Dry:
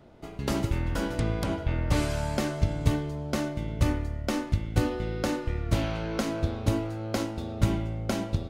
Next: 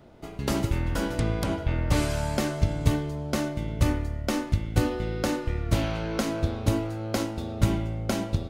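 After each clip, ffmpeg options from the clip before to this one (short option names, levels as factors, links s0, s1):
-af "highshelf=f=8200:g=4,volume=1.19"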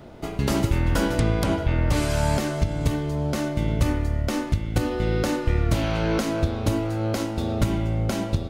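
-af "alimiter=limit=0.112:level=0:latency=1:release=383,volume=2.66"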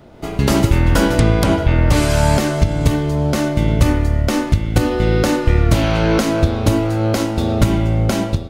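-af "dynaudnorm=f=100:g=5:m=3.35"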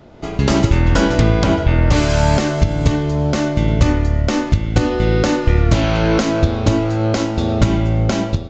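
-af "aresample=16000,aresample=44100"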